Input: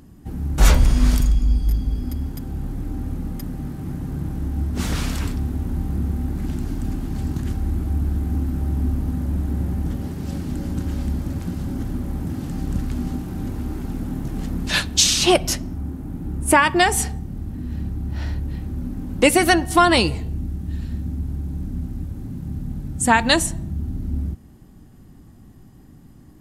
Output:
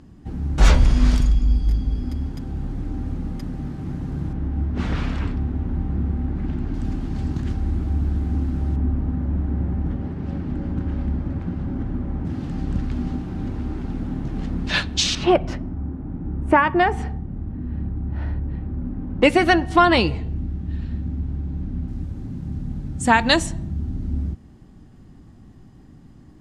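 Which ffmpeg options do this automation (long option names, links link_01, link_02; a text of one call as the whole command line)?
ffmpeg -i in.wav -af "asetnsamples=nb_out_samples=441:pad=0,asendcmd='4.33 lowpass f 2600;6.74 lowpass f 5100;8.76 lowpass f 2100;12.25 lowpass f 4100;15.15 lowpass f 1700;19.23 lowpass f 3500;21.88 lowpass f 6000',lowpass=5500" out.wav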